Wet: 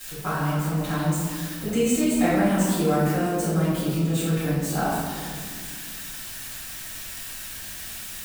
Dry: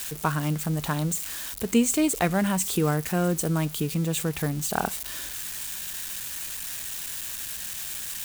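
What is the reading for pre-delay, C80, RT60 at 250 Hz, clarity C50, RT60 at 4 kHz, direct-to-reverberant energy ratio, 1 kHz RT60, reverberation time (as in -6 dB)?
4 ms, 0.5 dB, 2.9 s, -2.5 dB, 1.0 s, -14.5 dB, 1.7 s, 1.9 s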